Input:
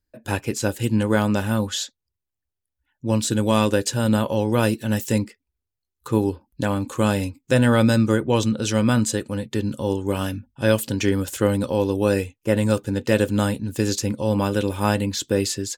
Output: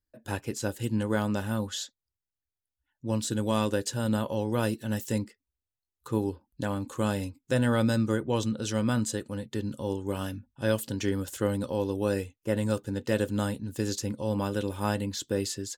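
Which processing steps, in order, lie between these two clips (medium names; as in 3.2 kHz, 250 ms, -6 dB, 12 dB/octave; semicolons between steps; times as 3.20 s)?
peaking EQ 2.4 kHz -5.5 dB 0.23 oct; trim -8 dB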